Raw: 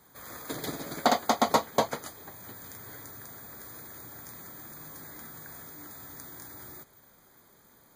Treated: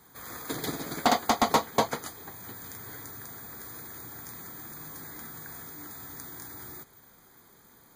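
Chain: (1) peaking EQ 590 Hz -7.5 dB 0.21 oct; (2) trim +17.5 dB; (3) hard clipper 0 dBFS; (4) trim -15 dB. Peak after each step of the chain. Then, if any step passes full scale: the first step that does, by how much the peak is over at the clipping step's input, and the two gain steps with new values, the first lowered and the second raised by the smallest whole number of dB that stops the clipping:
-8.5 dBFS, +9.0 dBFS, 0.0 dBFS, -15.0 dBFS; step 2, 9.0 dB; step 2 +8.5 dB, step 4 -6 dB

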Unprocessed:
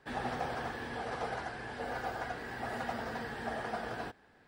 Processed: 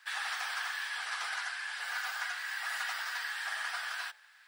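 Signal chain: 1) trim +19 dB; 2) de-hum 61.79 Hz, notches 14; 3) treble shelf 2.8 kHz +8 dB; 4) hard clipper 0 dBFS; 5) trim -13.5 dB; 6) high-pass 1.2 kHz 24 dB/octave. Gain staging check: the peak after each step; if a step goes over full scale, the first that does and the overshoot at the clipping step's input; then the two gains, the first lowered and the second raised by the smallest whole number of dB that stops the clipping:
-3.5 dBFS, -3.5 dBFS, -3.0 dBFS, -3.0 dBFS, -16.5 dBFS, -22.5 dBFS; nothing clips

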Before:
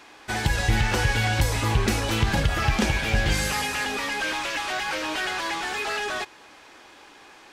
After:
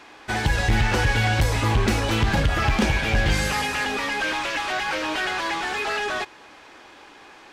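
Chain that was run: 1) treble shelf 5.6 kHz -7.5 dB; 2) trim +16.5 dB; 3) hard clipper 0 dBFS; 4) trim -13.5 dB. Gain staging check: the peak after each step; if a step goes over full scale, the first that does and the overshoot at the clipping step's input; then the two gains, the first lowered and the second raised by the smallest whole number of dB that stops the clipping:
-11.5 dBFS, +5.0 dBFS, 0.0 dBFS, -13.5 dBFS; step 2, 5.0 dB; step 2 +11.5 dB, step 4 -8.5 dB

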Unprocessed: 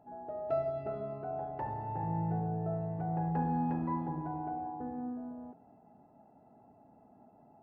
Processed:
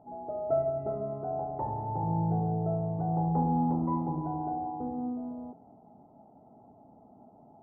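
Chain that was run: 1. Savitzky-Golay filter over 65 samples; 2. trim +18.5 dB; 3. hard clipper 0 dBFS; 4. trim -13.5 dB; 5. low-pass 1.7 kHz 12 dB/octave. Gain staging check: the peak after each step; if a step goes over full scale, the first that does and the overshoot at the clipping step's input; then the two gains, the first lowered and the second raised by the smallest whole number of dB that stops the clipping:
-22.0 dBFS, -3.5 dBFS, -3.5 dBFS, -17.0 dBFS, -17.0 dBFS; nothing clips

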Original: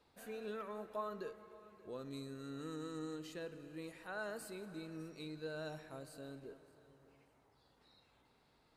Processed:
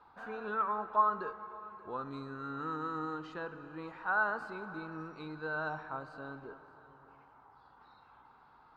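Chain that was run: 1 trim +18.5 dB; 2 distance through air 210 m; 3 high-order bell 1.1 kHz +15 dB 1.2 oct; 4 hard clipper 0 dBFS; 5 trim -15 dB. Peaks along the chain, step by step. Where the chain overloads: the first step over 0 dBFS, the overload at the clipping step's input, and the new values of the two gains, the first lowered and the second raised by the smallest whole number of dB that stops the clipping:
-12.5 dBFS, -13.5 dBFS, -2.0 dBFS, -2.0 dBFS, -17.0 dBFS; nothing clips

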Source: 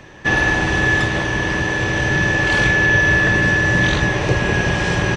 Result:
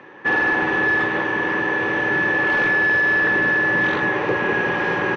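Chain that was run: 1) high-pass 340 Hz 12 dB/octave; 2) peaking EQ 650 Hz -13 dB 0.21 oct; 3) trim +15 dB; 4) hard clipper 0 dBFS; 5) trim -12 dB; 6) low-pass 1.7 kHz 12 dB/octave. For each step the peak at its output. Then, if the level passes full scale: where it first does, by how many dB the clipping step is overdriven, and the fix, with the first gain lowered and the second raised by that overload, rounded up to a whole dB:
-6.0 dBFS, -6.5 dBFS, +8.5 dBFS, 0.0 dBFS, -12.0 dBFS, -11.5 dBFS; step 3, 8.5 dB; step 3 +6 dB, step 5 -3 dB

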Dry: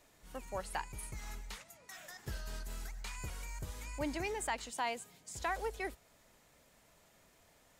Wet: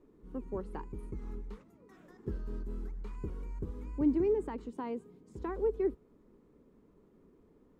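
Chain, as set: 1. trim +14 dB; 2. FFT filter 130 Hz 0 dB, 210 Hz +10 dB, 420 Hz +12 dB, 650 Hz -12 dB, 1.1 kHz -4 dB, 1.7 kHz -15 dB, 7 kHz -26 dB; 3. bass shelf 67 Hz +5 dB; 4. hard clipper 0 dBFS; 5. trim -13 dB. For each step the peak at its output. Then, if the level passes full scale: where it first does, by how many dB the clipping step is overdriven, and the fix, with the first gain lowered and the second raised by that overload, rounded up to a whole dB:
-9.5 dBFS, -6.5 dBFS, -6.0 dBFS, -6.0 dBFS, -19.0 dBFS; nothing clips

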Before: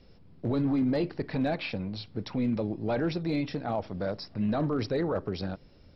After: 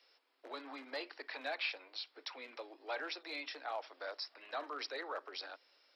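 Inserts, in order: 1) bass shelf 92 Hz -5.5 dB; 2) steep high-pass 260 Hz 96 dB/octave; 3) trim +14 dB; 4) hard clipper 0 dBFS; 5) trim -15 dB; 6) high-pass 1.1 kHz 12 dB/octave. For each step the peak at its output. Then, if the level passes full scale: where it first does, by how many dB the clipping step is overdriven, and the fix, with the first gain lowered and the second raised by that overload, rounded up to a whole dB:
-20.5 dBFS, -17.0 dBFS, -3.0 dBFS, -3.0 dBFS, -18.0 dBFS, -24.0 dBFS; nothing clips

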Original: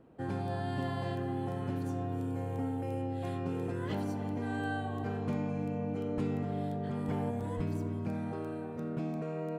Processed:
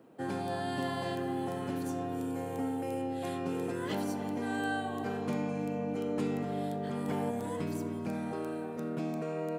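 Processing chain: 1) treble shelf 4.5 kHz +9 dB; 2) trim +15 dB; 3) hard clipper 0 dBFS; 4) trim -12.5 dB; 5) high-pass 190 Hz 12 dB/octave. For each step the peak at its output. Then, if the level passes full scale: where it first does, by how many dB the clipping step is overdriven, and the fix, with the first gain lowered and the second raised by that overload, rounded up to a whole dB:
-21.0 dBFS, -6.0 dBFS, -6.0 dBFS, -18.5 dBFS, -22.0 dBFS; nothing clips

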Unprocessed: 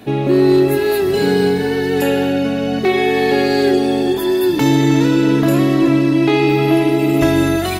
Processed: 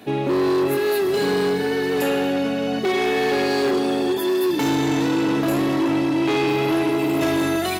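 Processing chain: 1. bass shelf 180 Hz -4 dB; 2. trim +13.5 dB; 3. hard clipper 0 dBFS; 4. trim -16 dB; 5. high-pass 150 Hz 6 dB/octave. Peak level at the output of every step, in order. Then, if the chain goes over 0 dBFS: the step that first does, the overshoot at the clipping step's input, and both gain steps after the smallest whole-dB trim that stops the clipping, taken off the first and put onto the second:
-5.0 dBFS, +8.5 dBFS, 0.0 dBFS, -16.0 dBFS, -12.0 dBFS; step 2, 8.5 dB; step 2 +4.5 dB, step 4 -7 dB

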